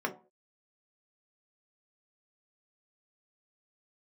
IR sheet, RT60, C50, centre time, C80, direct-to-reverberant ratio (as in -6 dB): 0.40 s, 13.5 dB, 10 ms, 19.5 dB, 1.5 dB